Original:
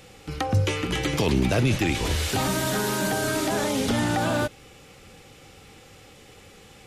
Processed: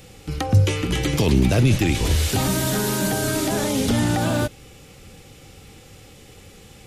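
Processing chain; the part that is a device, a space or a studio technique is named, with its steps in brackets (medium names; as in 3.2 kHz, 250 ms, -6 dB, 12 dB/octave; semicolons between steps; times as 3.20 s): smiley-face EQ (bass shelf 190 Hz +5.5 dB; peaking EQ 1.2 kHz -3.5 dB 2.2 oct; treble shelf 9 kHz +5 dB); trim +2.5 dB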